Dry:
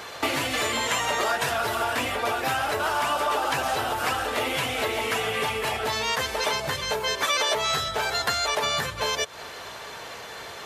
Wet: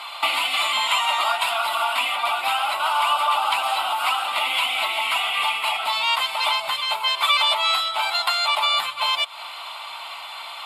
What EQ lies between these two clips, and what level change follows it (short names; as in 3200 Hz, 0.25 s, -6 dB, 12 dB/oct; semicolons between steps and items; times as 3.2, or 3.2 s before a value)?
HPF 850 Hz 12 dB/oct; LPF 10000 Hz 12 dB/oct; fixed phaser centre 1700 Hz, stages 6; +8.5 dB